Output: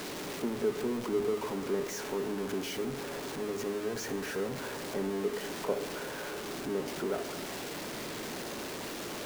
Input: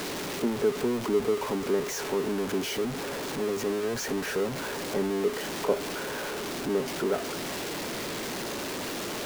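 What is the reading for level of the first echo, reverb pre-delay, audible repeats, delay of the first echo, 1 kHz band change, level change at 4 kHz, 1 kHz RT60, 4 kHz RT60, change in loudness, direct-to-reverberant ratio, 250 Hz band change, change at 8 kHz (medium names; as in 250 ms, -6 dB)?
no echo, 30 ms, no echo, no echo, -5.5 dB, -6.0 dB, 1.3 s, 1.1 s, -5.5 dB, 9.0 dB, -5.0 dB, -5.5 dB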